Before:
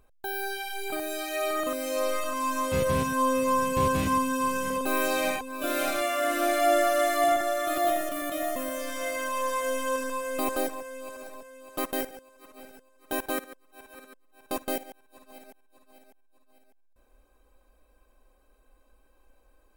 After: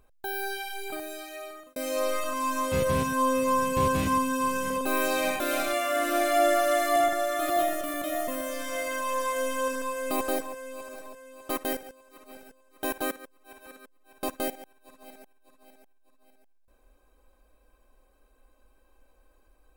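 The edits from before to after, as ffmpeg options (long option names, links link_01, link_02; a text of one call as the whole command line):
ffmpeg -i in.wav -filter_complex "[0:a]asplit=3[link_01][link_02][link_03];[link_01]atrim=end=1.76,asetpts=PTS-STARTPTS,afade=type=out:start_time=0.54:duration=1.22[link_04];[link_02]atrim=start=1.76:end=5.402,asetpts=PTS-STARTPTS,afade=type=in:duration=0.004:curve=hsin[link_05];[link_03]atrim=start=5.678[link_06];[link_04][link_05]concat=n=2:v=0:a=1[link_07];[link_07][link_06]acrossfade=duration=0.004:curve1=hsin:curve2=hsin" out.wav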